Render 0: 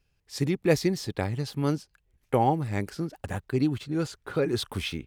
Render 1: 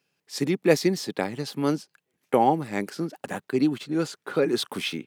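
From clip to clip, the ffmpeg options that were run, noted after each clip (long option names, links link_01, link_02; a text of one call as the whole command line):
ffmpeg -i in.wav -af "highpass=frequency=180:width=0.5412,highpass=frequency=180:width=1.3066,volume=3.5dB" out.wav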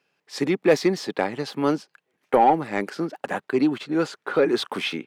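ffmpeg -i in.wav -filter_complex "[0:a]asplit=2[link_01][link_02];[link_02]highpass=frequency=720:poles=1,volume=15dB,asoftclip=type=tanh:threshold=-5.5dB[link_03];[link_01][link_03]amix=inputs=2:normalize=0,lowpass=frequency=1500:poles=1,volume=-6dB" out.wav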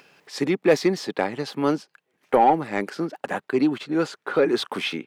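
ffmpeg -i in.wav -af "acompressor=mode=upward:threshold=-41dB:ratio=2.5" out.wav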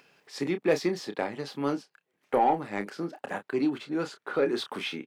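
ffmpeg -i in.wav -filter_complex "[0:a]asplit=2[link_01][link_02];[link_02]adelay=29,volume=-9dB[link_03];[link_01][link_03]amix=inputs=2:normalize=0,volume=-7dB" out.wav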